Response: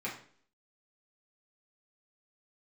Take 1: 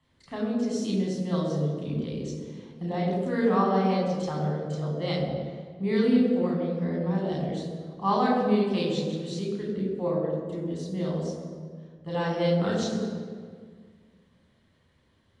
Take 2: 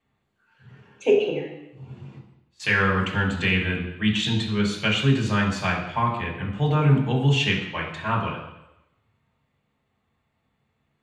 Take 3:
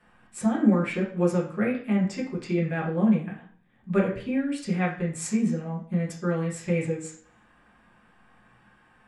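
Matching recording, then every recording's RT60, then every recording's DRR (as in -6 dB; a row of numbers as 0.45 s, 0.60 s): 3; 1.8 s, 0.90 s, 0.50 s; -3.5 dB, -4.0 dB, -6.5 dB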